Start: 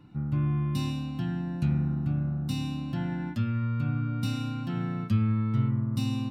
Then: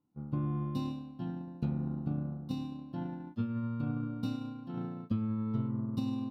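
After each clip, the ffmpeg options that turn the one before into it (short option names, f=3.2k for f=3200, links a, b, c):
-af "agate=range=-33dB:threshold=-20dB:ratio=3:detection=peak,equalizer=f=250:t=o:w=1:g=9,equalizer=f=500:t=o:w=1:g=8,equalizer=f=1k:t=o:w=1:g=9,equalizer=f=2k:t=o:w=1:g=-7,equalizer=f=4k:t=o:w=1:g=5,equalizer=f=8k:t=o:w=1:g=-7,acompressor=threshold=-29dB:ratio=12"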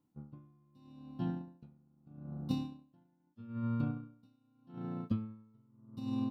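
-af "aeval=exprs='val(0)*pow(10,-36*(0.5-0.5*cos(2*PI*0.8*n/s))/20)':c=same,volume=2.5dB"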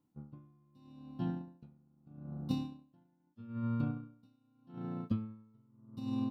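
-af anull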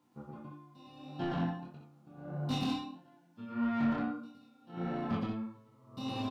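-filter_complex "[0:a]aecho=1:1:29.15|116.6|180.8:0.562|1|0.562,asplit=2[a][b];[b]highpass=f=720:p=1,volume=25dB,asoftclip=type=tanh:threshold=-19dB[c];[a][c]amix=inputs=2:normalize=0,lowpass=f=3.7k:p=1,volume=-6dB,flanger=delay=20:depth=4.7:speed=1.6,volume=-2dB"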